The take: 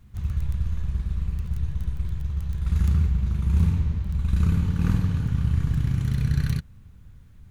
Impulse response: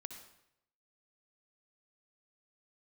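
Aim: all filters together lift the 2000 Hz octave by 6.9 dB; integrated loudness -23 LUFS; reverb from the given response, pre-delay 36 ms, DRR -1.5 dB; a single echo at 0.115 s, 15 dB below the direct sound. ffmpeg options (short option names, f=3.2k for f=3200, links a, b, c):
-filter_complex "[0:a]equalizer=f=2k:t=o:g=9,aecho=1:1:115:0.178,asplit=2[a][b];[1:a]atrim=start_sample=2205,adelay=36[c];[b][c]afir=irnorm=-1:irlink=0,volume=5.5dB[d];[a][d]amix=inputs=2:normalize=0,volume=-1dB"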